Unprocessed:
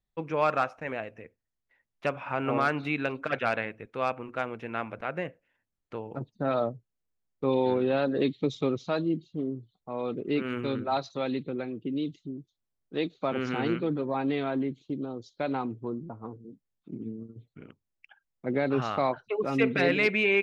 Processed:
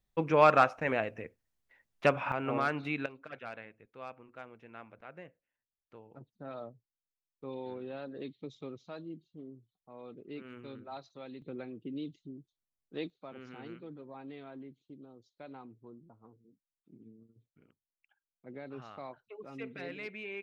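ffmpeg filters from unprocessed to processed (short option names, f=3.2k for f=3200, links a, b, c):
-af "asetnsamples=n=441:p=0,asendcmd='2.32 volume volume -5dB;3.06 volume volume -16dB;11.42 volume volume -8.5dB;13.1 volume volume -18dB',volume=3.5dB"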